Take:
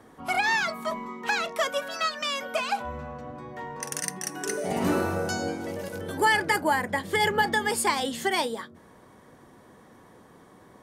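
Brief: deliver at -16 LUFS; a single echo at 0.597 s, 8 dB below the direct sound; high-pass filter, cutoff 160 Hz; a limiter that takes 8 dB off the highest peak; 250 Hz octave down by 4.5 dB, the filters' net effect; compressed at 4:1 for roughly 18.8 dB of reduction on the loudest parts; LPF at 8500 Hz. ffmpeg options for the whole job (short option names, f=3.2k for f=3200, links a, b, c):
-af "highpass=160,lowpass=8.5k,equalizer=f=250:t=o:g=-5,acompressor=threshold=-42dB:ratio=4,alimiter=level_in=9.5dB:limit=-24dB:level=0:latency=1,volume=-9.5dB,aecho=1:1:597:0.398,volume=27.5dB"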